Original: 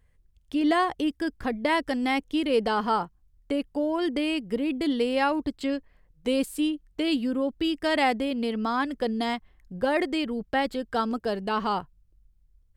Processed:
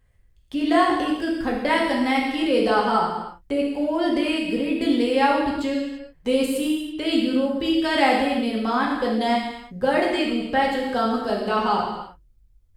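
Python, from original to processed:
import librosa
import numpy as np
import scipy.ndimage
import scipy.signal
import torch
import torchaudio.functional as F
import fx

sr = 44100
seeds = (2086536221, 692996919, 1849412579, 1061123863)

y = fx.rev_gated(x, sr, seeds[0], gate_ms=370, shape='falling', drr_db=-3.5)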